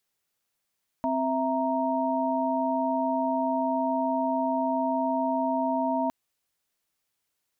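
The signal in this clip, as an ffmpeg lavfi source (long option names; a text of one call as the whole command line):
ffmpeg -f lavfi -i "aevalsrc='0.0398*(sin(2*PI*261.63*t)+sin(2*PI*659.26*t)+sin(2*PI*932.33*t))':duration=5.06:sample_rate=44100" out.wav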